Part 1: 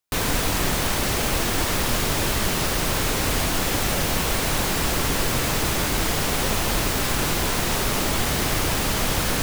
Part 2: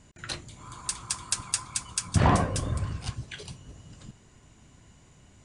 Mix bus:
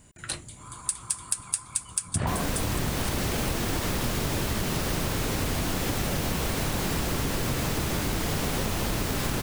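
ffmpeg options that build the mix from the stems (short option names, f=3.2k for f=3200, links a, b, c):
-filter_complex "[0:a]equalizer=f=140:w=0.36:g=6.5,adelay=2150,volume=-3dB[a];[1:a]aexciter=amount=3.8:drive=7.2:freq=8.2k,volume=0dB[b];[a][b]amix=inputs=2:normalize=0,acompressor=threshold=-24dB:ratio=6"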